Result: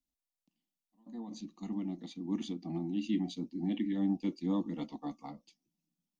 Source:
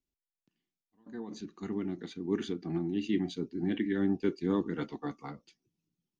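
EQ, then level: static phaser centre 410 Hz, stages 6; 0.0 dB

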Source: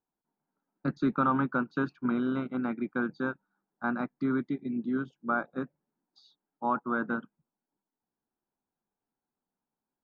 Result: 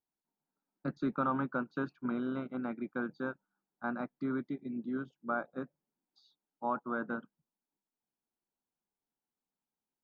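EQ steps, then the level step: dynamic bell 590 Hz, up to +5 dB, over -47 dBFS, Q 2; -6.5 dB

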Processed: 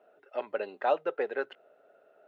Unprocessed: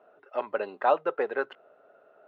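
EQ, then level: bass shelf 270 Hz -7 dB; peaking EQ 1.1 kHz -9 dB 0.8 oct; 0.0 dB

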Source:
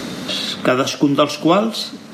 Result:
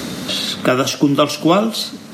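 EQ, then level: high-pass 55 Hz; bass shelf 86 Hz +10.5 dB; treble shelf 7.7 kHz +9 dB; 0.0 dB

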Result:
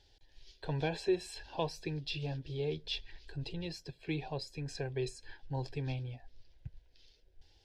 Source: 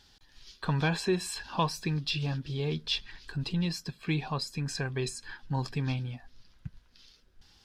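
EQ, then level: low-pass 2 kHz 6 dB/octave; static phaser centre 500 Hz, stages 4; 0.0 dB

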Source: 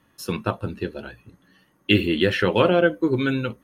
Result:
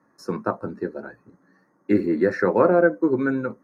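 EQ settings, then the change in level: Butterworth band-stop 3.1 kHz, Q 0.76; three-band isolator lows -21 dB, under 160 Hz, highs -21 dB, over 5.6 kHz; +1.5 dB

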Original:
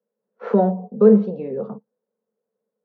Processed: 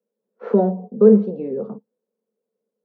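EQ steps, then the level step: peaking EQ 310 Hz +9.5 dB 1.3 oct; -5.0 dB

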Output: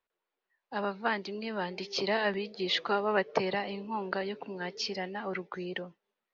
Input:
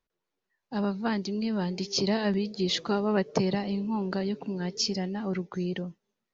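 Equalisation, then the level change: three-band isolator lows -15 dB, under 400 Hz, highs -23 dB, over 4.1 kHz; dynamic bell 2 kHz, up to +4 dB, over -48 dBFS, Q 0.88; +1.5 dB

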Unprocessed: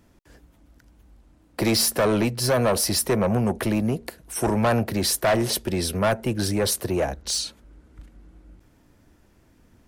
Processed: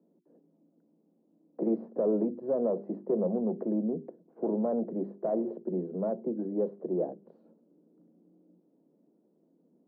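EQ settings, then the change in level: steep high-pass 160 Hz 72 dB/octave; four-pole ladder low-pass 620 Hz, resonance 30%; hum notches 50/100/150/200/250/300/350/400 Hz; 0.0 dB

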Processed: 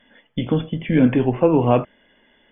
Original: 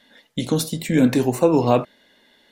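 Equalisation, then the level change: brick-wall FIR low-pass 3.5 kHz; bass shelf 76 Hz +11.5 dB; 0.0 dB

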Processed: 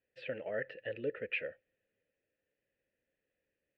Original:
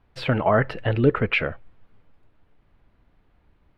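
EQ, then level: vowel filter e; peaking EQ 690 Hz -8.5 dB 1.6 oct; -1.5 dB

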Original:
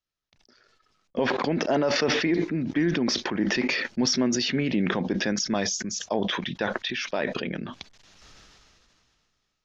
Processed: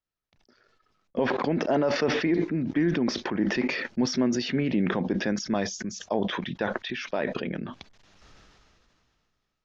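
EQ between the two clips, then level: treble shelf 2.8 kHz -9.5 dB; 0.0 dB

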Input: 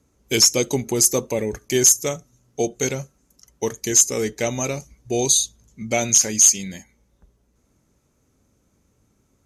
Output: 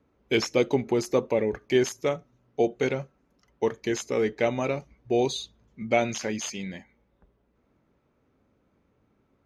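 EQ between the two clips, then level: distance through air 370 m; bass shelf 180 Hz -11 dB; +2.0 dB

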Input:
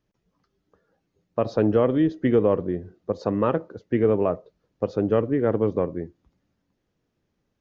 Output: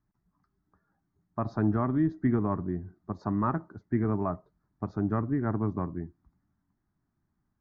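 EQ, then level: low-pass 1.7 kHz 6 dB/octave; static phaser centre 1.2 kHz, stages 4; 0.0 dB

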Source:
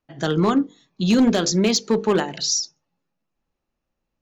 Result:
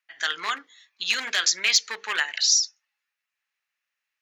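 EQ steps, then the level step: resonant high-pass 1.9 kHz, resonance Q 2.6; +1.5 dB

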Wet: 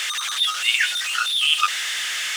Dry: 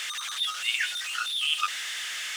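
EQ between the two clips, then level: high-pass 220 Hz 24 dB/octave; +8.0 dB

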